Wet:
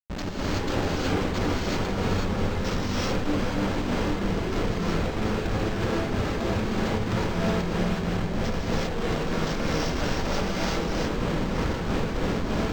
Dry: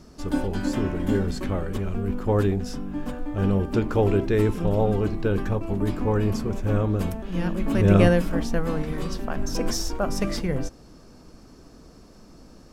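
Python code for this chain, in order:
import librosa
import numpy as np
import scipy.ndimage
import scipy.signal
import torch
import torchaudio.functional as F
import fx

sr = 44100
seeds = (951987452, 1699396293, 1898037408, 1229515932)

y = fx.peak_eq(x, sr, hz=9600.0, db=13.5, octaves=2.1)
y = fx.over_compress(y, sr, threshold_db=-33.0, ratio=-1.0)
y = fx.low_shelf(y, sr, hz=100.0, db=-10.5, at=(5.13, 7.36))
y = fx.echo_feedback(y, sr, ms=489, feedback_pct=35, wet_db=-4)
y = fx.tube_stage(y, sr, drive_db=23.0, bias=0.55)
y = fx.step_gate(y, sr, bpm=157, pattern='.xx.xx.xxx', floor_db=-12.0, edge_ms=4.5)
y = fx.schmitt(y, sr, flips_db=-37.5)
y = fx.rev_gated(y, sr, seeds[0], gate_ms=400, shape='rising', drr_db=-6.5)
y = np.interp(np.arange(len(y)), np.arange(len(y))[::4], y[::4])
y = F.gain(torch.from_numpy(y), 5.0).numpy()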